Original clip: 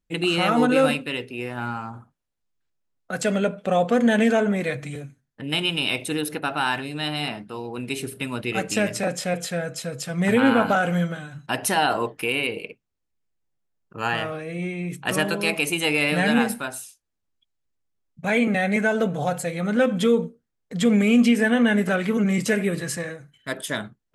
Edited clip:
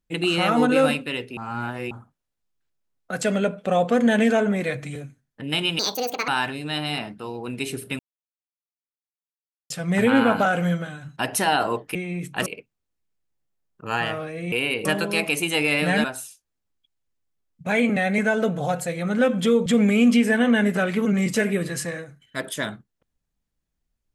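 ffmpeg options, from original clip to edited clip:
-filter_complex "[0:a]asplit=13[a][b][c][d][e][f][g][h][i][j][k][l][m];[a]atrim=end=1.372[n];[b]atrim=start=1.368:end=1.912,asetpts=PTS-STARTPTS,areverse[o];[c]atrim=start=1.908:end=5.794[p];[d]atrim=start=5.79:end=6.58,asetpts=PTS-STARTPTS,asetrate=71001,aresample=44100,atrim=end_sample=21639,asetpts=PTS-STARTPTS[q];[e]atrim=start=6.576:end=8.29,asetpts=PTS-STARTPTS,afade=t=out:st=1.71:d=0.004:c=hsin[r];[f]atrim=start=8.29:end=10,asetpts=PTS-STARTPTS,volume=0[s];[g]atrim=start=10:end=12.252,asetpts=PTS-STARTPTS,afade=t=in:d=0.004:c=hsin[t];[h]atrim=start=14.638:end=15.152[u];[i]atrim=start=12.578:end=14.642[v];[j]atrim=start=12.248:end=12.582[w];[k]atrim=start=15.148:end=16.342[x];[l]atrim=start=16.618:end=20.242[y];[m]atrim=start=20.778[z];[n][o]acrossfade=d=0.004:c1=hsin:c2=hsin[aa];[aa][p]acrossfade=d=0.004:c1=hsin:c2=hsin[ab];[ab][q]acrossfade=d=0.004:c1=hsin:c2=hsin[ac];[r][s][t]concat=n=3:v=0:a=1[ad];[ac][ad]acrossfade=d=0.004:c1=hsin:c2=hsin[ae];[ae][u]acrossfade=d=0.004:c1=hsin:c2=hsin[af];[af][v]acrossfade=d=0.004:c1=hsin:c2=hsin[ag];[ag][w]acrossfade=d=0.004:c1=hsin:c2=hsin[ah];[ah][x]acrossfade=d=0.004:c1=hsin:c2=hsin[ai];[ai][y]acrossfade=d=0.004:c1=hsin:c2=hsin[aj];[aj][z]acrossfade=d=0.004:c1=hsin:c2=hsin"

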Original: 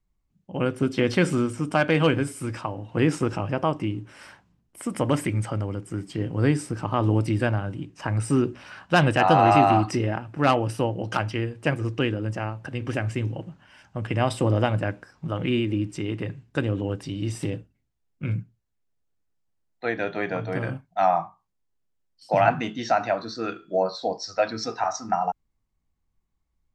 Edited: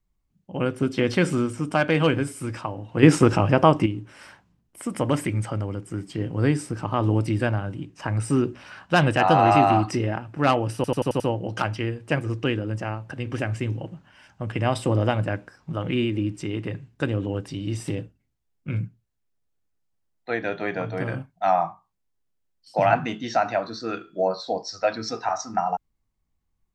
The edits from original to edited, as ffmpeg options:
-filter_complex "[0:a]asplit=8[a][b][c][d][e][f][g][h];[a]atrim=end=3.032[i];[b]atrim=start=3.028:end=3.862,asetpts=PTS-STARTPTS,volume=8dB[j];[c]atrim=start=3.858:end=10.842[k];[d]atrim=start=10.748:end=10.842[l];[e]atrim=start=10.748:end=10.842[m];[f]atrim=start=10.748:end=10.842[n];[g]atrim=start=10.748:end=10.842[o];[h]atrim=start=10.748[p];[i][j]acrossfade=d=0.004:c1=hsin:c2=hsin[q];[q][k]acrossfade=d=0.004:c1=hsin:c2=hsin[r];[r][l]acrossfade=d=0.004:c1=hsin:c2=hsin[s];[s][m]acrossfade=d=0.004:c1=hsin:c2=hsin[t];[t][n]acrossfade=d=0.004:c1=hsin:c2=hsin[u];[u][o]acrossfade=d=0.004:c1=hsin:c2=hsin[v];[v][p]acrossfade=d=0.004:c1=hsin:c2=hsin"

